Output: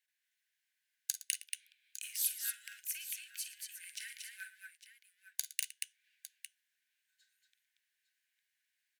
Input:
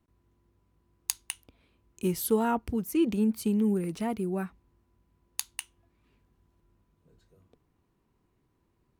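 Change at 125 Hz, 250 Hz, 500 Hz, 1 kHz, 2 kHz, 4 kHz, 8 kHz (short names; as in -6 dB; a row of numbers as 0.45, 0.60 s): under -40 dB, under -40 dB, under -40 dB, under -30 dB, -1.5 dB, -1.0 dB, 0.0 dB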